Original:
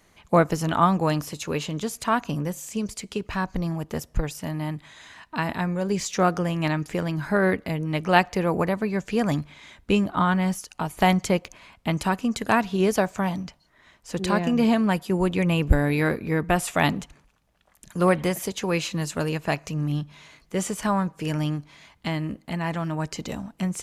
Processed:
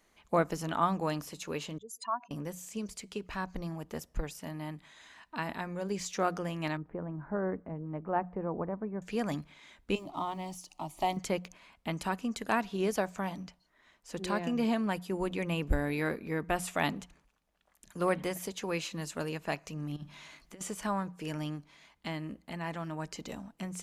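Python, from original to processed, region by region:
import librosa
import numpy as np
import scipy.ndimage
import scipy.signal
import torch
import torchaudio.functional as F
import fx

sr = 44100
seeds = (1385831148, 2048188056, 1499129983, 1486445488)

y = fx.chain(x, sr, fx.spec_expand(power=2.8),
    fx.highpass(hz=630.0, slope=12), at=(1.78, 2.31))
y = fx.chain(y, sr, fx.ladder_lowpass(hz=1500.0, resonance_pct=20),
    fx.low_shelf(hz=350.0, db=5.5), at=(6.77, 9.02))
y = fx.chain(y, sr, fx.law_mismatch(coded='mu'),
    fx.high_shelf(hz=9600.0, db=-9.5),
    fx.fixed_phaser(hz=310.0, stages=8), at=(9.95, 11.17))
y = fx.chain(y, sr, fx.peak_eq(hz=460.0, db=-9.5, octaves=0.23),
    fx.over_compress(threshold_db=-32.0, ratio=-0.5), at=(19.96, 20.61))
y = fx.peak_eq(y, sr, hz=110.0, db=-11.5, octaves=0.65)
y = fx.hum_notches(y, sr, base_hz=60, count=3)
y = y * librosa.db_to_amplitude(-8.5)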